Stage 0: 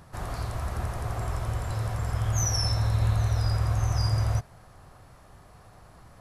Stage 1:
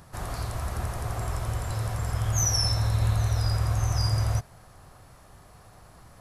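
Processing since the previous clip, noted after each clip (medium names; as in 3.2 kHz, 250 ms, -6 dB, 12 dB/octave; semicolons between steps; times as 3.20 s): treble shelf 4.8 kHz +6 dB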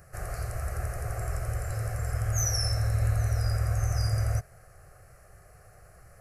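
static phaser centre 950 Hz, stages 6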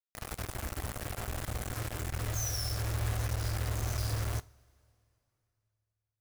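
bit crusher 5-bit; on a send at -14.5 dB: reverberation, pre-delay 3 ms; on the sum: trim -7.5 dB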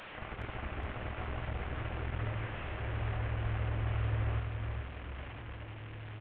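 one-bit delta coder 16 kbps, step -37.5 dBFS; on a send: feedback delay 417 ms, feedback 43%, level -6 dB; on the sum: trim -3 dB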